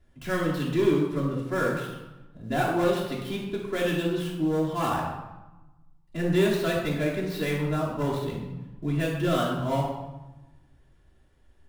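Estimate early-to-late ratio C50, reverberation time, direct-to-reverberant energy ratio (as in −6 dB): 2.5 dB, 1.0 s, −8.0 dB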